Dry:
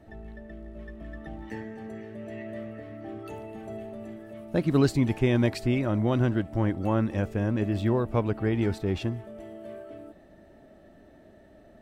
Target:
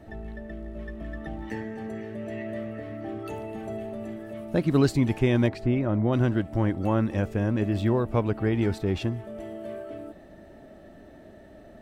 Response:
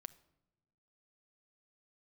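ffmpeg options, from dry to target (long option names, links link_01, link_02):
-filter_complex "[0:a]asplit=3[link_01][link_02][link_03];[link_01]afade=type=out:start_time=5.47:duration=0.02[link_04];[link_02]lowpass=frequency=1400:poles=1,afade=type=in:start_time=5.47:duration=0.02,afade=type=out:start_time=6.12:duration=0.02[link_05];[link_03]afade=type=in:start_time=6.12:duration=0.02[link_06];[link_04][link_05][link_06]amix=inputs=3:normalize=0,asplit=2[link_07][link_08];[link_08]acompressor=threshold=-37dB:ratio=6,volume=-2dB[link_09];[link_07][link_09]amix=inputs=2:normalize=0"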